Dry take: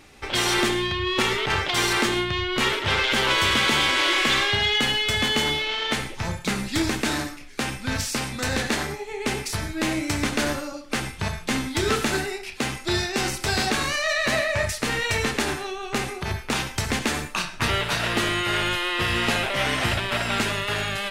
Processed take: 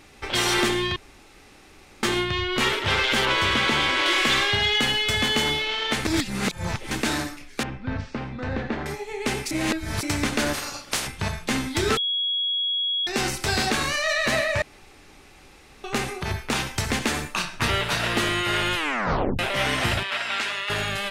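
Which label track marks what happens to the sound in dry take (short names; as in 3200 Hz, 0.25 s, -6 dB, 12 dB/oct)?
0.960000	2.030000	room tone
3.250000	4.060000	high shelf 6500 Hz -11.5 dB
6.050000	6.910000	reverse
7.630000	8.860000	tape spacing loss at 10 kHz 42 dB
9.510000	10.030000	reverse
10.530000	11.060000	spectral limiter ceiling under each frame's peak by 23 dB
11.970000	13.070000	bleep 3330 Hz -22 dBFS
14.620000	15.840000	room tone
16.340000	17.180000	short-mantissa float mantissa of 6-bit
18.760000	18.760000	tape stop 0.63 s
20.030000	20.700000	band-pass 2400 Hz, Q 0.56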